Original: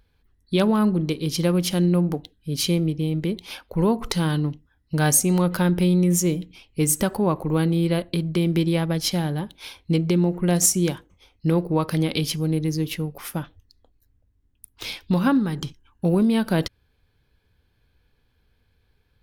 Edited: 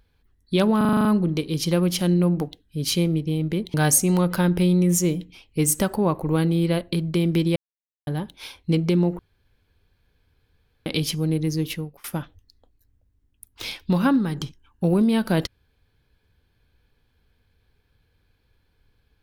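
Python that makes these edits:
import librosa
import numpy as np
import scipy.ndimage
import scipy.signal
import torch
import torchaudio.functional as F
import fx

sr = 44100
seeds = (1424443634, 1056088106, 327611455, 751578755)

y = fx.edit(x, sr, fx.stutter(start_s=0.77, slice_s=0.04, count=8),
    fx.cut(start_s=3.46, length_s=1.49),
    fx.silence(start_s=8.77, length_s=0.51),
    fx.room_tone_fill(start_s=10.4, length_s=1.67),
    fx.fade_out_to(start_s=12.91, length_s=0.34, floor_db=-23.5), tone=tone)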